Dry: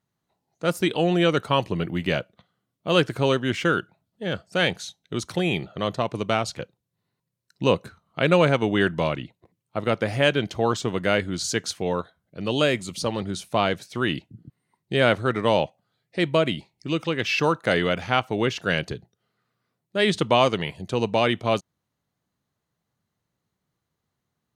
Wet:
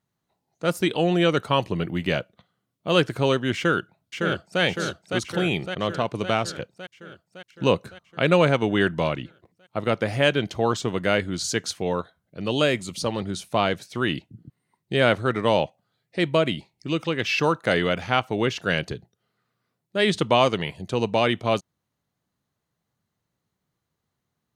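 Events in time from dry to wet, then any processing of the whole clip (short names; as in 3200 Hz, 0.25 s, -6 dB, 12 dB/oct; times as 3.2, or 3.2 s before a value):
3.56–4.62 echo throw 0.56 s, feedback 65%, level -4.5 dB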